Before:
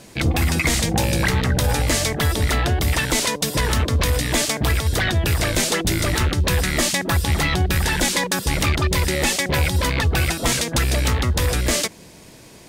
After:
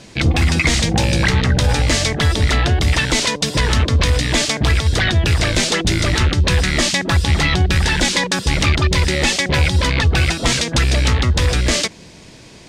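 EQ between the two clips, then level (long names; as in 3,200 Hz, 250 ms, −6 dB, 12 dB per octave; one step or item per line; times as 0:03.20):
high-frequency loss of the air 100 metres
low-shelf EQ 350 Hz +5 dB
high-shelf EQ 2,100 Hz +10.5 dB
0.0 dB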